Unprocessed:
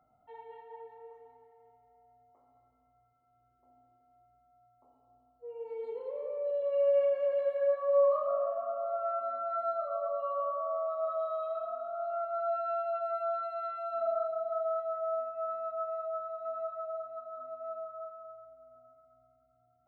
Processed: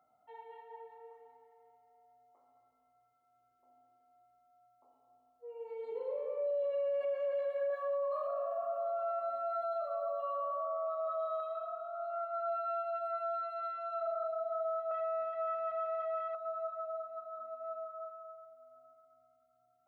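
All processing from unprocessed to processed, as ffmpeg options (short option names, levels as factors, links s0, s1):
-filter_complex "[0:a]asettb=1/sr,asplit=3[s0][s1][s2];[s0]atrim=end=5.914[s3];[s1]atrim=start=5.91:end=7.05,asetpts=PTS-STARTPTS,afade=t=in:d=0.004:c=qsin,afade=t=out:st=1.136:d=0.004:c=qsin,lowshelf=f=420:g=5.5,asplit=2[s4][s5];[s5]adelay=42,volume=0.531[s6];[s4][s6]amix=inputs=2:normalize=0,atrim=end_sample=50274[s7];[s2]atrim=start=7.046[s8];[s3][s7]acrossfade=d=0.004:c1=hsin:c2=qsin[s9];[s9][s8]acrossfade=d=0.004:c1=qsin:c2=hsin,asettb=1/sr,asplit=3[s10][s11][s12];[s10]atrim=end=7.704[s13];[s11]atrim=start=7.7:end=10.65,asetpts=PTS-STARTPTS,afade=t=in:d=0.004:c=qsin,afade=t=out:st=2.946:d=0.004:c=qsin,highshelf=f=3300:g=8.5,aecho=1:1:1.2:0.52,atrim=end_sample=130095[s14];[s12]atrim=start=10.646[s15];[s13][s14]acrossfade=d=0.004:c1=hsin:c2=qsin[s16];[s16][s15]acrossfade=d=0.004:c1=qsin:c2=hsin,asettb=1/sr,asplit=3[s17][s18][s19];[s17]atrim=end=11.404[s20];[s18]atrim=start=11.4:end=14.23,asetpts=PTS-STARTPTS,afade=t=in:d=0.004:c=qsin,afade=t=out:st=2.826:d=0.004:c=qsin,lowshelf=f=330:g=-12,acompressor=mode=upward:threshold=0.00794:ratio=2.5:attack=3.2:release=140:knee=2.83:detection=peak[s21];[s19]atrim=start=14.226[s22];[s20][s21]acrossfade=d=0.004:c1=hsin:c2=qsin[s23];[s23][s22]acrossfade=d=0.004:c1=qsin:c2=hsin,asettb=1/sr,asplit=3[s24][s25][s26];[s24]atrim=end=14.914[s27];[s25]atrim=start=14.91:end=16.35,asetpts=PTS-STARTPTS,afade=t=in:d=0.004:c=qsin,afade=t=out:st=1.436:d=0.004:c=qsin,aeval=exprs='val(0)+0.5*0.00891*sgn(val(0))':c=same,lowpass=f=2100:w=0.5412,lowpass=f=2100:w=1.3066[s28];[s26]atrim=start=16.346[s29];[s27][s28]acrossfade=d=0.004:c1=hsin:c2=qsin[s30];[s30][s29]acrossfade=d=0.004:c1=qsin:c2=hsin,highpass=f=520:p=1,alimiter=level_in=1.88:limit=0.0631:level=0:latency=1:release=17,volume=0.531"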